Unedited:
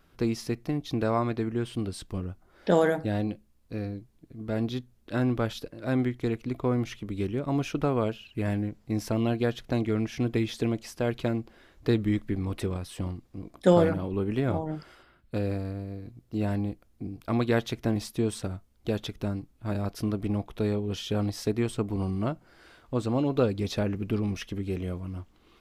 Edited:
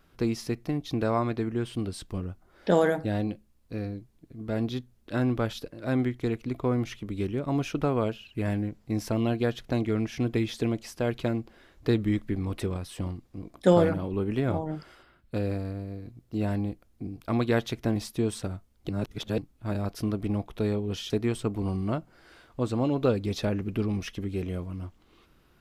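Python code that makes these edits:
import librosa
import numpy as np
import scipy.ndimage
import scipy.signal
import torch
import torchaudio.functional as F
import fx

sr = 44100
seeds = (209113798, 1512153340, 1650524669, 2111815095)

y = fx.edit(x, sr, fx.reverse_span(start_s=18.89, length_s=0.49),
    fx.cut(start_s=21.1, length_s=0.34), tone=tone)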